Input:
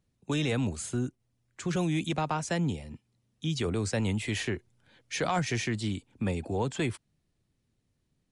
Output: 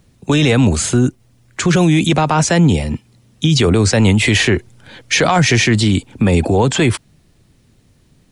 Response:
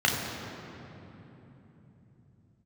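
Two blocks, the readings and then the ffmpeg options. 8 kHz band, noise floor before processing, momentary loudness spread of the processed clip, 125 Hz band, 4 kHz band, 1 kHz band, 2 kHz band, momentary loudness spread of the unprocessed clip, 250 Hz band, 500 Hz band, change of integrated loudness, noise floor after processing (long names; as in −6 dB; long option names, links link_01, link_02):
+18.5 dB, −77 dBFS, 8 LU, +17.5 dB, +19.0 dB, +15.5 dB, +18.0 dB, 8 LU, +17.5 dB, +16.5 dB, +17.5 dB, −54 dBFS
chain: -filter_complex "[0:a]acrossover=split=6700[link_01][link_02];[link_02]acompressor=threshold=-48dB:ratio=4:attack=1:release=60[link_03];[link_01][link_03]amix=inputs=2:normalize=0,alimiter=level_in=26.5dB:limit=-1dB:release=50:level=0:latency=1,volume=-3.5dB"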